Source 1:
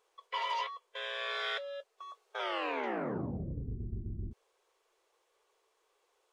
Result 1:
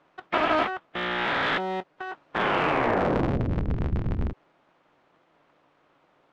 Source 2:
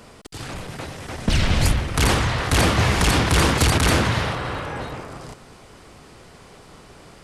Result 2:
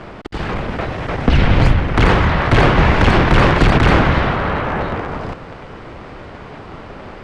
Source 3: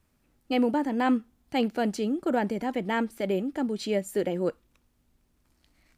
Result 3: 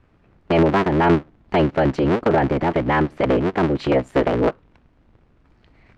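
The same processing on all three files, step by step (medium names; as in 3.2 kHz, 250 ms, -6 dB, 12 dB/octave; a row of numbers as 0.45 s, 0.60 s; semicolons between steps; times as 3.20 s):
cycle switcher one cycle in 3, inverted; low-pass 2.3 kHz 12 dB/octave; in parallel at +3 dB: compression, threshold -31 dBFS; on the sum: trim +5 dB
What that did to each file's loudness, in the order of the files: +11.0 LU, +5.0 LU, +9.0 LU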